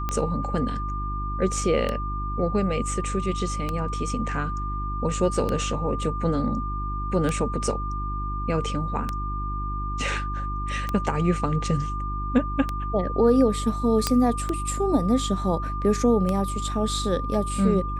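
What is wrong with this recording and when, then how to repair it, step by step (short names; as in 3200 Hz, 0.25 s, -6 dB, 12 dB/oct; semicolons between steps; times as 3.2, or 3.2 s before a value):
hum 50 Hz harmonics 7 -30 dBFS
tick 33 1/3 rpm -13 dBFS
tone 1200 Hz -31 dBFS
14.07 pop -6 dBFS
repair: de-click; notch 1200 Hz, Q 30; de-hum 50 Hz, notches 7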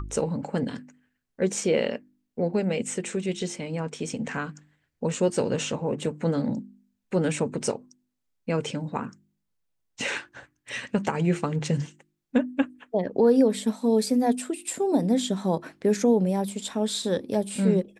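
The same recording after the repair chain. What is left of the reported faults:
none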